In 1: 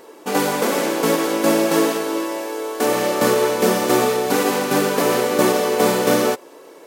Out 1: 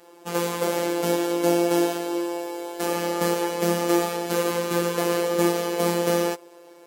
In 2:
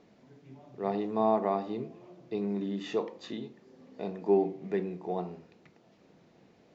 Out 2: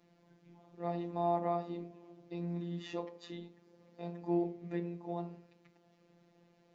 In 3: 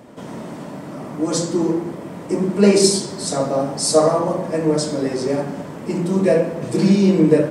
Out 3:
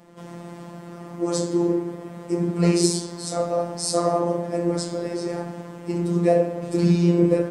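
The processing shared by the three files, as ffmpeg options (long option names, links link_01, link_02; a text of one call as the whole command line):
ffmpeg -i in.wav -af "afftfilt=real='hypot(re,im)*cos(PI*b)':imag='0':win_size=1024:overlap=0.75,adynamicequalizer=threshold=0.0224:dfrequency=450:dqfactor=1.4:tfrequency=450:tqfactor=1.4:attack=5:release=100:ratio=0.375:range=1.5:mode=boostabove:tftype=bell,volume=-3dB" out.wav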